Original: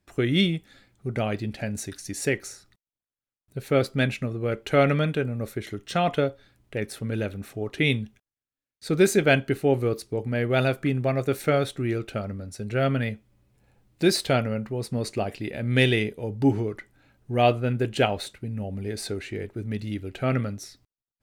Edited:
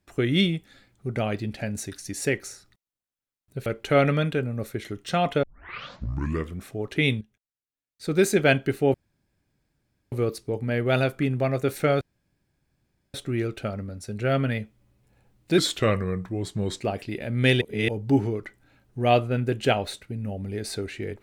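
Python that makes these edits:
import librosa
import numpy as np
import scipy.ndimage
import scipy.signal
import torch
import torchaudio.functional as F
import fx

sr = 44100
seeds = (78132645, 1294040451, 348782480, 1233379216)

y = fx.edit(x, sr, fx.cut(start_s=3.66, length_s=0.82),
    fx.tape_start(start_s=6.25, length_s=1.25),
    fx.fade_in_from(start_s=8.03, length_s=1.21, floor_db=-13.5),
    fx.insert_room_tone(at_s=9.76, length_s=1.18),
    fx.insert_room_tone(at_s=11.65, length_s=1.13),
    fx.speed_span(start_s=14.09, length_s=1.04, speed=0.85),
    fx.reverse_span(start_s=15.94, length_s=0.27), tone=tone)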